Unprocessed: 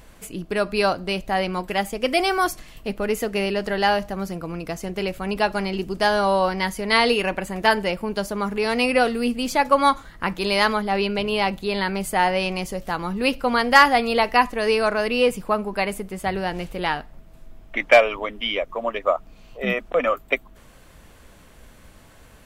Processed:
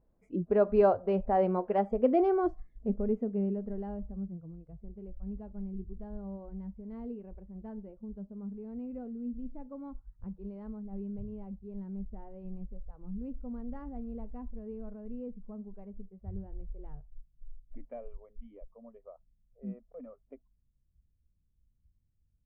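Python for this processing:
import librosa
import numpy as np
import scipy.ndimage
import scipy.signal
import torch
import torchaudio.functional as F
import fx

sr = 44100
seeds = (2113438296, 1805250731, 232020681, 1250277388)

y = fx.noise_reduce_blind(x, sr, reduce_db=22)
y = fx.filter_sweep_lowpass(y, sr, from_hz=600.0, to_hz=110.0, start_s=1.73, end_s=4.56, q=0.83)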